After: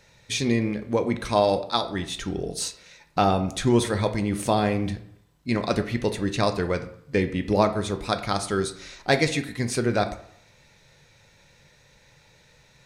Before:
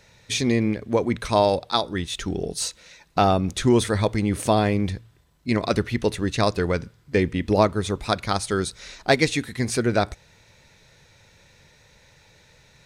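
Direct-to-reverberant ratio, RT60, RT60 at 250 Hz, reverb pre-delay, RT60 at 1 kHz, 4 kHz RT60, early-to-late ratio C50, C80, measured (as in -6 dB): 7.0 dB, 0.65 s, 0.60 s, 3 ms, 0.70 s, 0.40 s, 12.5 dB, 15.5 dB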